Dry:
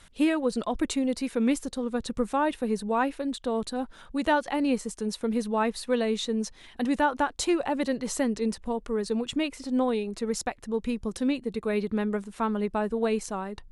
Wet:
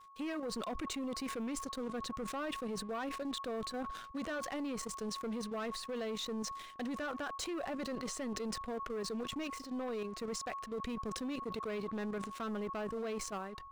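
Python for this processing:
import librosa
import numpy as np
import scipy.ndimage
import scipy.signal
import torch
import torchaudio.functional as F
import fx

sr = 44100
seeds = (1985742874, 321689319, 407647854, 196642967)

y = scipy.signal.sosfilt(scipy.signal.butter(2, 6300.0, 'lowpass', fs=sr, output='sos'), x)
y = fx.low_shelf(y, sr, hz=400.0, db=-7.5)
y = fx.notch(y, sr, hz=890.0, q=5.3)
y = np.sign(y) * np.maximum(np.abs(y) - 10.0 ** (-54.5 / 20.0), 0.0)
y = fx.level_steps(y, sr, step_db=12)
y = fx.dynamic_eq(y, sr, hz=3600.0, q=1.1, threshold_db=-54.0, ratio=4.0, max_db=-4)
y = 10.0 ** (-36.5 / 20.0) * np.tanh(y / 10.0 ** (-36.5 / 20.0))
y = y + 10.0 ** (-57.0 / 20.0) * np.sin(2.0 * np.pi * 1100.0 * np.arange(len(y)) / sr)
y = fx.sustainer(y, sr, db_per_s=50.0)
y = y * librosa.db_to_amplitude(2.0)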